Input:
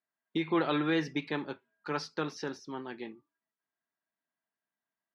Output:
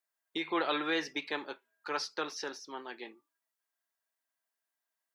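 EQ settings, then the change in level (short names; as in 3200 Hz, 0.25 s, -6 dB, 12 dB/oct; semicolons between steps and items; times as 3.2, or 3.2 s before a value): HPF 440 Hz 12 dB/oct; high shelf 4500 Hz +8 dB; 0.0 dB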